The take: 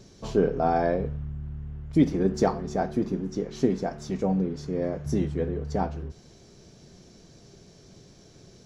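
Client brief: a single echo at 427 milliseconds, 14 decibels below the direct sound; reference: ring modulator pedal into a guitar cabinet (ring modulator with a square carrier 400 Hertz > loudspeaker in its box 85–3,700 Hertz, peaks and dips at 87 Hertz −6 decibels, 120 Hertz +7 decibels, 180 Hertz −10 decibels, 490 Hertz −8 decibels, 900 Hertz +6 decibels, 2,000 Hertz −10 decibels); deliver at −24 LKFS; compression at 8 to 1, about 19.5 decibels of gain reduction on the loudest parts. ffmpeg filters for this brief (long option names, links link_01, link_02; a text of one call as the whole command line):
ffmpeg -i in.wav -af "acompressor=threshold=-37dB:ratio=8,aecho=1:1:427:0.2,aeval=exprs='val(0)*sgn(sin(2*PI*400*n/s))':channel_layout=same,highpass=85,equalizer=frequency=87:width_type=q:width=4:gain=-6,equalizer=frequency=120:width_type=q:width=4:gain=7,equalizer=frequency=180:width_type=q:width=4:gain=-10,equalizer=frequency=490:width_type=q:width=4:gain=-8,equalizer=frequency=900:width_type=q:width=4:gain=6,equalizer=frequency=2000:width_type=q:width=4:gain=-10,lowpass=frequency=3700:width=0.5412,lowpass=frequency=3700:width=1.3066,volume=18.5dB" out.wav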